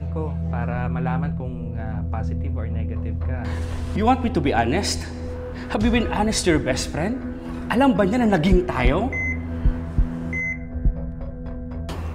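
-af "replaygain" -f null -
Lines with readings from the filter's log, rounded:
track_gain = +2.7 dB
track_peak = 0.379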